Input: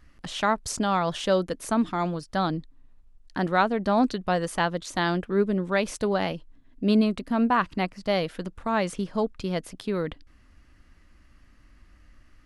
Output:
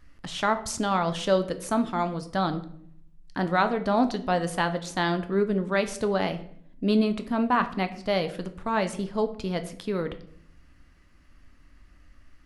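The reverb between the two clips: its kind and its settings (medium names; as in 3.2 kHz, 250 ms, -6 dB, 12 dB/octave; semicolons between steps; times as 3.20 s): simulated room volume 120 m³, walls mixed, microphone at 0.3 m; trim -1 dB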